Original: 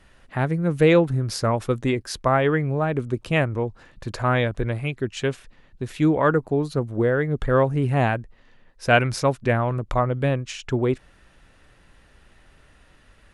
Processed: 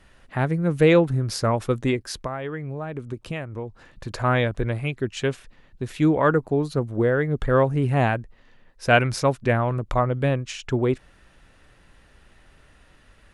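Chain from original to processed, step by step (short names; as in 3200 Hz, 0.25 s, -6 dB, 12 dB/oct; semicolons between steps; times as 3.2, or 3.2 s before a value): 1.96–4.11 compressor 6:1, threshold -28 dBFS, peak gain reduction 13 dB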